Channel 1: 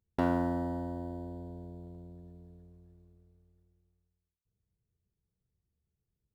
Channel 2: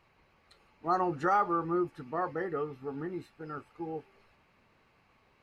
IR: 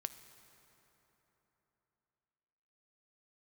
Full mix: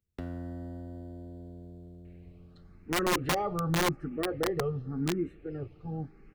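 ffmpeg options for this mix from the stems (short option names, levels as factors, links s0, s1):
-filter_complex "[0:a]acrossover=split=130[s0][s1];[s1]acompressor=threshold=0.00794:ratio=2.5[s2];[s0][s2]amix=inputs=2:normalize=0,volume=0.891[s3];[1:a]aemphasis=mode=reproduction:type=riaa,asplit=2[s4][s5];[s5]afreqshift=0.89[s6];[s4][s6]amix=inputs=2:normalize=1,adelay=2050,volume=1.19,asplit=2[s7][s8];[s8]volume=0.335[s9];[2:a]atrim=start_sample=2205[s10];[s9][s10]afir=irnorm=-1:irlink=0[s11];[s3][s7][s11]amix=inputs=3:normalize=0,equalizer=f=940:t=o:w=0.47:g=-15,aeval=exprs='(mod(11.9*val(0)+1,2)-1)/11.9':c=same"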